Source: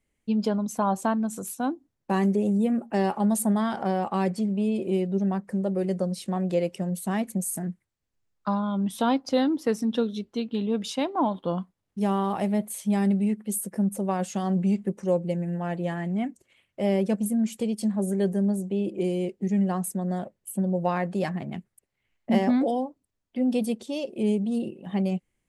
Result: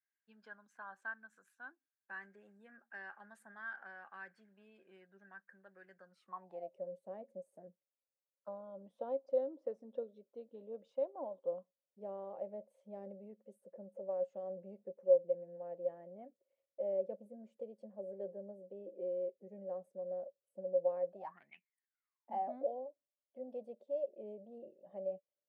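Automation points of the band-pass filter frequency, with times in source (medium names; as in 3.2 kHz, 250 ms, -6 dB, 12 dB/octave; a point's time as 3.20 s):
band-pass filter, Q 16
6.06 s 1.6 kHz
6.80 s 550 Hz
21.12 s 550 Hz
21.56 s 2.6 kHz
22.59 s 580 Hz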